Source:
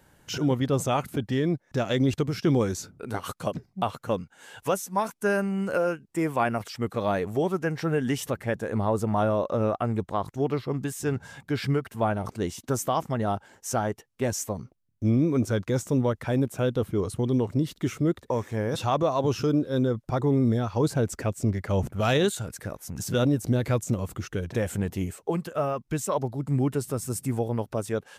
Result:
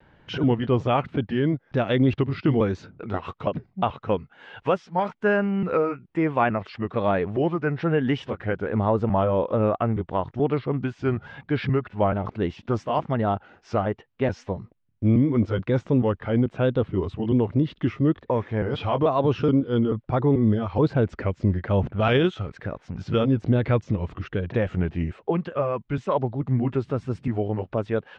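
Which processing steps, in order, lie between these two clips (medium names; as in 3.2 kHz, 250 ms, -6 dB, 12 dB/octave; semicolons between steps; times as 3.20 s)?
pitch shift switched off and on -1.5 st, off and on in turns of 433 ms; low-pass 3.3 kHz 24 dB/octave; vibrato 0.79 Hz 33 cents; trim +3.5 dB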